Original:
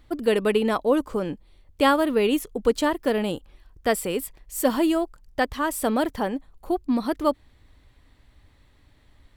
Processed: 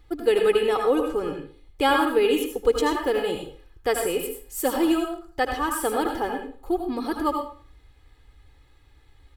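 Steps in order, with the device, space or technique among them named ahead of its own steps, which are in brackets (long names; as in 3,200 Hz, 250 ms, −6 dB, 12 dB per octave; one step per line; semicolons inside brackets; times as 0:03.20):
microphone above a desk (comb filter 2.4 ms, depth 74%; convolution reverb RT60 0.40 s, pre-delay 73 ms, DRR 3 dB)
level −3 dB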